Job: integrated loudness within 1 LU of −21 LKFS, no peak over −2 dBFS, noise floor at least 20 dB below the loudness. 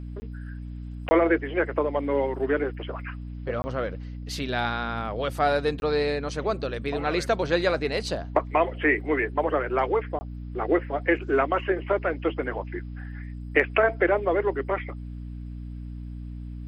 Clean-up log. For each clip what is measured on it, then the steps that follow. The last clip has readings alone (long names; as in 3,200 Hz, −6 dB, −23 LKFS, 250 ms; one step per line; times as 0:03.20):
number of dropouts 5; longest dropout 20 ms; mains hum 60 Hz; hum harmonics up to 300 Hz; level of the hum −34 dBFS; integrated loudness −26.0 LKFS; sample peak −6.5 dBFS; target loudness −21.0 LKFS
→ repair the gap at 0:00.20/0:01.09/0:03.62/0:05.80/0:10.19, 20 ms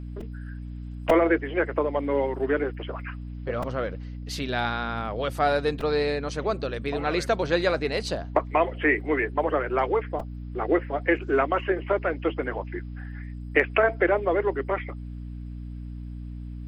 number of dropouts 0; mains hum 60 Hz; hum harmonics up to 300 Hz; level of the hum −34 dBFS
→ mains-hum notches 60/120/180/240/300 Hz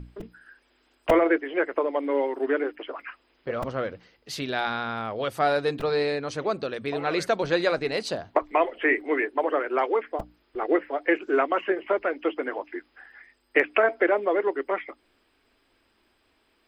mains hum none found; integrated loudness −26.0 LKFS; sample peak −6.0 dBFS; target loudness −21.0 LKFS
→ level +5 dB
brickwall limiter −2 dBFS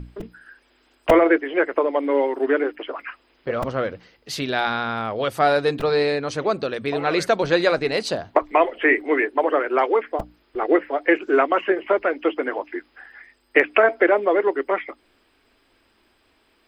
integrated loudness −21.0 LKFS; sample peak −2.0 dBFS; background noise floor −63 dBFS